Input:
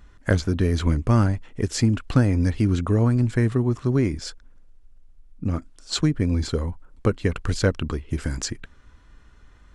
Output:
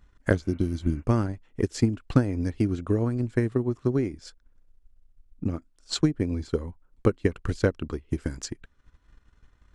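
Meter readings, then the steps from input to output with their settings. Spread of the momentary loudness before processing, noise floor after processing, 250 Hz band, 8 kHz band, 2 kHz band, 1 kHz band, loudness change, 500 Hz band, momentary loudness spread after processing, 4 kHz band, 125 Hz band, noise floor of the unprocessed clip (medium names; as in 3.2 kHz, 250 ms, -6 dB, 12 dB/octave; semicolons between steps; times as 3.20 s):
10 LU, -64 dBFS, -3.0 dB, -7.0 dB, -4.5 dB, -5.0 dB, -4.0 dB, -1.0 dB, 9 LU, -6.5 dB, -6.5 dB, -52 dBFS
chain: spectral replace 0.47–1.00 s, 370–2900 Hz before; transient shaper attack +7 dB, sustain -6 dB; dynamic bell 350 Hz, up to +5 dB, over -30 dBFS, Q 1.3; trim -9 dB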